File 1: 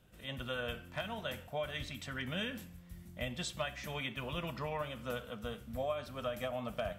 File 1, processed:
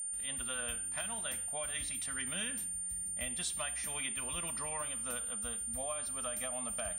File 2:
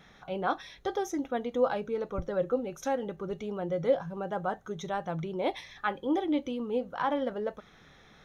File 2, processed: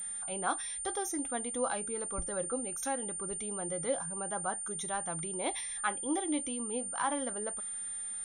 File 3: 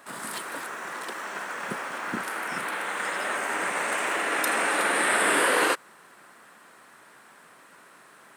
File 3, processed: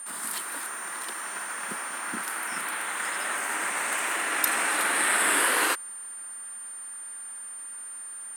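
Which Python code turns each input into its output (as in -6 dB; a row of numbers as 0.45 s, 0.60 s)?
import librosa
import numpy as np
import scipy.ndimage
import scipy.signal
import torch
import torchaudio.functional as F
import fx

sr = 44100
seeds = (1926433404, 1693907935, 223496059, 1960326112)

y = x + 10.0 ** (-41.0 / 20.0) * np.sin(2.0 * np.pi * 9000.0 * np.arange(len(x)) / sr)
y = fx.graphic_eq_10(y, sr, hz=(125, 500, 16000), db=(-12, -7, 11))
y = F.gain(torch.from_numpy(y), -1.0).numpy()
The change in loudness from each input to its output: +4.5 LU, -1.5 LU, -1.0 LU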